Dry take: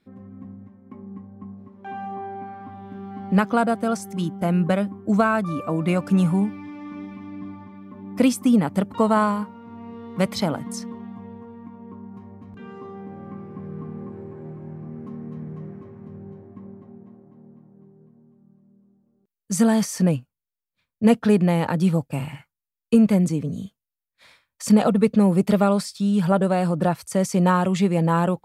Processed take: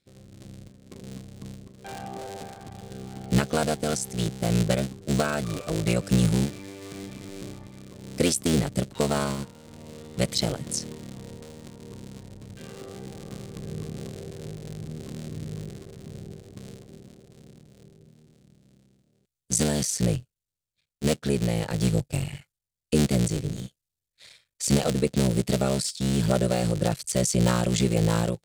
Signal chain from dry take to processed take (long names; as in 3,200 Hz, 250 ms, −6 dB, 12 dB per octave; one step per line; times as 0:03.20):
sub-harmonics by changed cycles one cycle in 3, muted
octave-band graphic EQ 125/250/500/1,000/4,000/8,000 Hz +6/−6/+4/−10/+6/+10 dB
automatic gain control gain up to 6.5 dB
level −6.5 dB